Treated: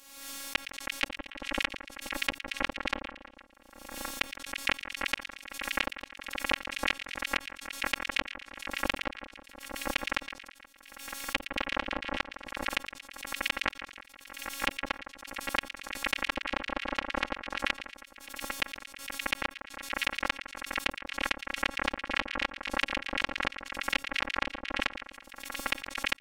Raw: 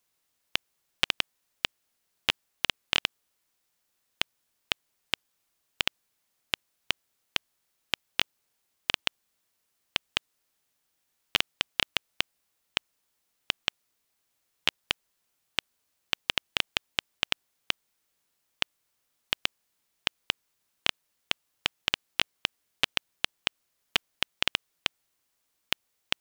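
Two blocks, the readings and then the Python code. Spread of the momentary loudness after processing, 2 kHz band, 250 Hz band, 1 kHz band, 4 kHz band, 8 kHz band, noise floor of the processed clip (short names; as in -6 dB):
11 LU, +2.0 dB, +8.0 dB, +6.0 dB, -6.0 dB, +1.0 dB, -58 dBFS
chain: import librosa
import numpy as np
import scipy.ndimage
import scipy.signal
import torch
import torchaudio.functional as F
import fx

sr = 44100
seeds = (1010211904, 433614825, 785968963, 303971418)

p1 = fx.env_lowpass_down(x, sr, base_hz=690.0, full_db=-31.0)
p2 = fx.high_shelf(p1, sr, hz=9400.0, db=-3.5)
p3 = fx.robotise(p2, sr, hz=276.0)
p4 = p3 + fx.echo_split(p3, sr, split_hz=1800.0, low_ms=160, high_ms=115, feedback_pct=52, wet_db=-10.5, dry=0)
y = fx.pre_swell(p4, sr, db_per_s=54.0)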